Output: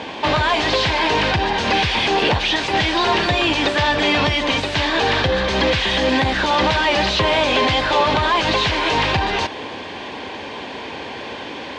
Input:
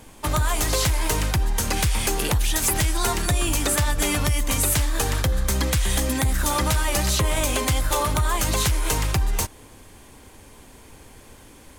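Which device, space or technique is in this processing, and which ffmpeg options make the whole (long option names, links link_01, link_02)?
overdrive pedal into a guitar cabinet: -filter_complex "[0:a]asplit=2[link_01][link_02];[link_02]highpass=frequency=720:poles=1,volume=27dB,asoftclip=type=tanh:threshold=-11dB[link_03];[link_01][link_03]amix=inputs=2:normalize=0,lowpass=frequency=4900:poles=1,volume=-6dB,highpass=81,equalizer=frequency=120:width_type=q:width=4:gain=-4,equalizer=frequency=1300:width_type=q:width=4:gain=-9,equalizer=frequency=2100:width_type=q:width=4:gain=-3,lowpass=frequency=4100:width=0.5412,lowpass=frequency=4100:width=1.3066,volume=4dB"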